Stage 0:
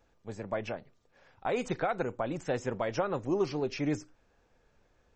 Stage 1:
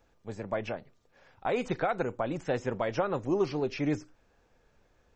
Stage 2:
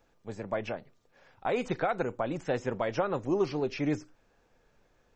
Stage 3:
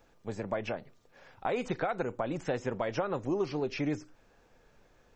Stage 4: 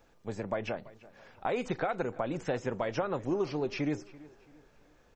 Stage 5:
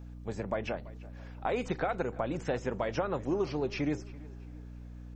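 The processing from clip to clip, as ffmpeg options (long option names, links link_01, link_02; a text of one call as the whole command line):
ffmpeg -i in.wav -filter_complex "[0:a]acrossover=split=5200[link_01][link_02];[link_02]acompressor=threshold=-59dB:ratio=4:attack=1:release=60[link_03];[link_01][link_03]amix=inputs=2:normalize=0,volume=1.5dB" out.wav
ffmpeg -i in.wav -af "equalizer=frequency=61:width_type=o:width=0.77:gain=-8" out.wav
ffmpeg -i in.wav -af "acompressor=threshold=-37dB:ratio=2,volume=4dB" out.wav
ffmpeg -i in.wav -filter_complex "[0:a]asplit=2[link_01][link_02];[link_02]adelay=335,lowpass=frequency=4800:poles=1,volume=-20dB,asplit=2[link_03][link_04];[link_04]adelay=335,lowpass=frequency=4800:poles=1,volume=0.39,asplit=2[link_05][link_06];[link_06]adelay=335,lowpass=frequency=4800:poles=1,volume=0.39[link_07];[link_01][link_03][link_05][link_07]amix=inputs=4:normalize=0" out.wav
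ffmpeg -i in.wav -af "aeval=exprs='val(0)+0.00631*(sin(2*PI*60*n/s)+sin(2*PI*2*60*n/s)/2+sin(2*PI*3*60*n/s)/3+sin(2*PI*4*60*n/s)/4+sin(2*PI*5*60*n/s)/5)':channel_layout=same" out.wav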